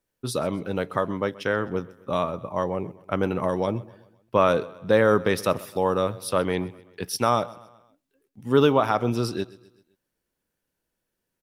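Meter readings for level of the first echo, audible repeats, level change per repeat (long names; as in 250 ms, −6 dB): −20.5 dB, 3, −6.5 dB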